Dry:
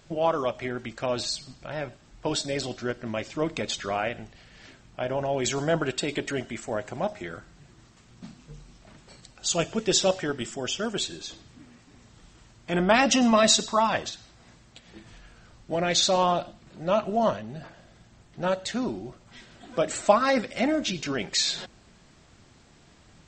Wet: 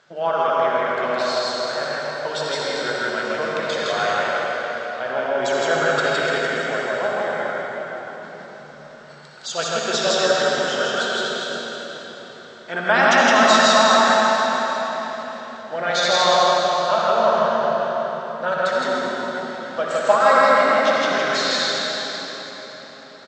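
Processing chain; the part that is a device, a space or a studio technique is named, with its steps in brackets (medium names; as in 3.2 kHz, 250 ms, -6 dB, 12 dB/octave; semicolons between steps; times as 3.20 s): station announcement (band-pass 300–4800 Hz; peaking EQ 1.5 kHz +9 dB 0.46 oct; loudspeakers at several distances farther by 21 m -10 dB, 56 m -1 dB; reverberation RT60 4.6 s, pre-delay 69 ms, DRR -3.5 dB); graphic EQ with 31 bands 200 Hz -4 dB, 315 Hz -12 dB, 2.5 kHz -6 dB; trim +1 dB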